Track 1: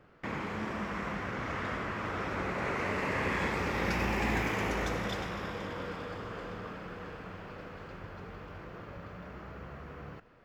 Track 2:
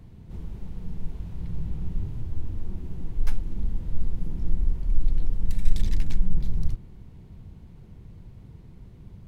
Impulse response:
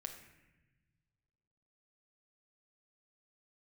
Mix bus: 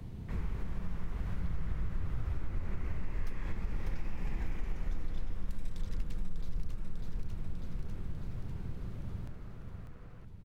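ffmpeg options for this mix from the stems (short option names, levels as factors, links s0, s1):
-filter_complex "[0:a]adelay=50,volume=0.211[s0];[1:a]acrossover=split=120|330[s1][s2][s3];[s1]acompressor=threshold=0.0501:ratio=4[s4];[s2]acompressor=threshold=0.00447:ratio=4[s5];[s3]acompressor=threshold=0.002:ratio=4[s6];[s4][s5][s6]amix=inputs=3:normalize=0,volume=1.41,asplit=2[s7][s8];[s8]volume=0.501,aecho=0:1:597|1194|1791|2388|2985|3582|4179|4776|5373:1|0.57|0.325|0.185|0.106|0.0602|0.0343|0.0195|0.0111[s9];[s0][s7][s9]amix=inputs=3:normalize=0,acompressor=threshold=0.0316:ratio=3"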